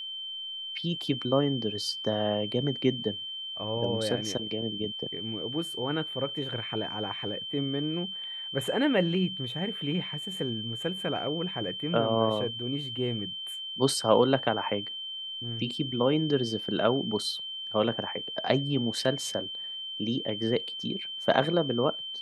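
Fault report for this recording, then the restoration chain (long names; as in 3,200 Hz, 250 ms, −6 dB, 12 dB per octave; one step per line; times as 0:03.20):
whistle 3,100 Hz −35 dBFS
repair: notch filter 3,100 Hz, Q 30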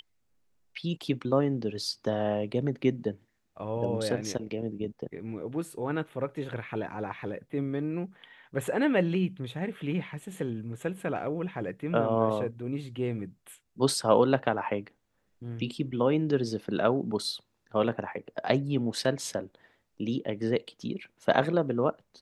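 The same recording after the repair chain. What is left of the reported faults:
none of them is left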